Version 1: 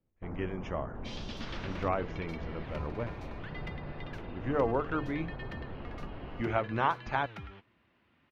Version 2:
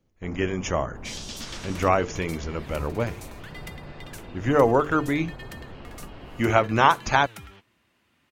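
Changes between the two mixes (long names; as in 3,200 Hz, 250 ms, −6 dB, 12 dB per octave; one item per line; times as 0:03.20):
speech +9.5 dB
master: remove high-frequency loss of the air 290 metres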